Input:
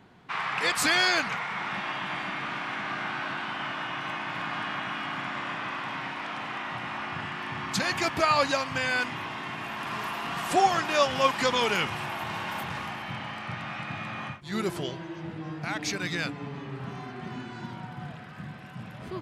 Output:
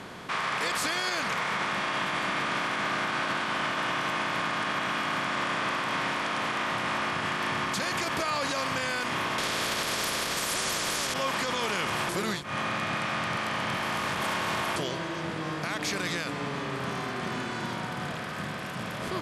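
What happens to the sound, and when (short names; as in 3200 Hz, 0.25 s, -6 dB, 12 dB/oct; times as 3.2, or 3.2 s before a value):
9.38–11.14 spectral compressor 10:1
12.09–14.76 reverse
whole clip: per-bin compression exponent 0.6; elliptic low-pass 12000 Hz, stop band 50 dB; limiter -18 dBFS; gain -2 dB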